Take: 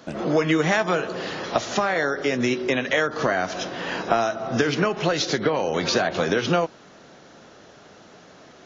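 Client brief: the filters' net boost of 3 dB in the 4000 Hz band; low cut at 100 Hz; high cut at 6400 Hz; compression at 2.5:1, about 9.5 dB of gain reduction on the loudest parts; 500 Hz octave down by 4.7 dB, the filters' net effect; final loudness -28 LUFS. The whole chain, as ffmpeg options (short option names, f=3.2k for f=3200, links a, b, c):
-af "highpass=100,lowpass=6.4k,equalizer=f=500:t=o:g=-6,equalizer=f=4k:t=o:g=4.5,acompressor=threshold=-33dB:ratio=2.5,volume=4.5dB"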